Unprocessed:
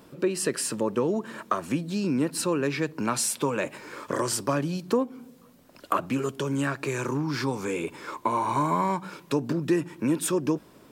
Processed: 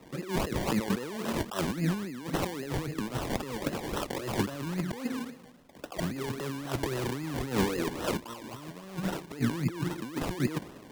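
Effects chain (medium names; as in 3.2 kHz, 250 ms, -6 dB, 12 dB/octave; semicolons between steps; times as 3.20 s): rattle on loud lows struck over -30 dBFS, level -32 dBFS; compressor with a negative ratio -35 dBFS, ratio -1; LFO notch sine 0.21 Hz 770–3700 Hz; decimation with a swept rate 27×, swing 60% 3.7 Hz; three bands expanded up and down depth 70%; trim +3 dB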